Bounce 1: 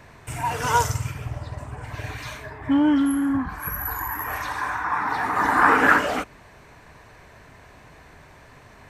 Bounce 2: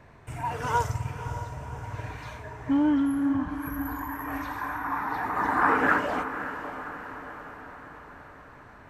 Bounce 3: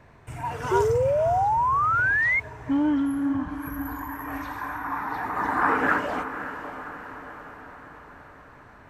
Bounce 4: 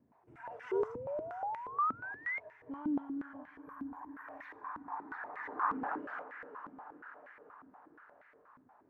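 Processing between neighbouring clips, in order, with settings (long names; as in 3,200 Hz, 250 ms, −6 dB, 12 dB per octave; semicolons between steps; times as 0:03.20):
high-shelf EQ 2,600 Hz −10.5 dB; feedback delay with all-pass diffusion 556 ms, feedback 59%, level −11 dB; level −4 dB
sound drawn into the spectrogram rise, 0:00.71–0:02.40, 370–2,200 Hz −22 dBFS
band-pass on a step sequencer 8.4 Hz 250–2,000 Hz; level −5.5 dB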